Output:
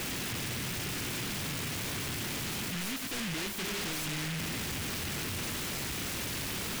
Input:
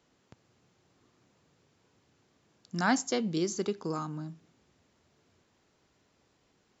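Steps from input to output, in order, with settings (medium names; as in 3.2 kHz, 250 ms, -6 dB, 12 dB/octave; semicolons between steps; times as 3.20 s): one-bit comparator; treble shelf 4.5 kHz -6.5 dB; delay time shaken by noise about 2.3 kHz, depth 0.49 ms; trim +3 dB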